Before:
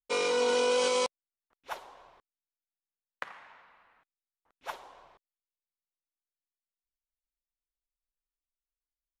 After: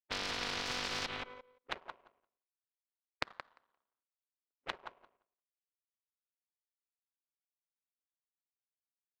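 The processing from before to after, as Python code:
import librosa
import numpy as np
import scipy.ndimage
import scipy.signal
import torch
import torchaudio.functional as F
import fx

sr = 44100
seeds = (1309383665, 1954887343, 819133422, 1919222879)

p1 = fx.cabinet(x, sr, low_hz=220.0, low_slope=24, high_hz=2300.0, hz=(220.0, 370.0, 820.0, 2000.0), db=(7, 3, -5, -3))
p2 = fx.env_lowpass(p1, sr, base_hz=930.0, full_db=-29.0)
p3 = p2 + fx.echo_feedback(p2, sr, ms=174, feedback_pct=31, wet_db=-8.0, dry=0)
p4 = fx.power_curve(p3, sr, exponent=2.0)
p5 = fx.spectral_comp(p4, sr, ratio=10.0)
y = p5 * 10.0 ** (6.0 / 20.0)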